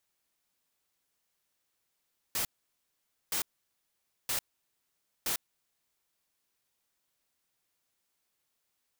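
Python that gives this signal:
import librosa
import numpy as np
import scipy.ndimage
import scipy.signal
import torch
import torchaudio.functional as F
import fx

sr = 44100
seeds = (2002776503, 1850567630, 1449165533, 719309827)

y = fx.noise_burst(sr, seeds[0], colour='white', on_s=0.1, off_s=0.87, bursts=4, level_db=-31.5)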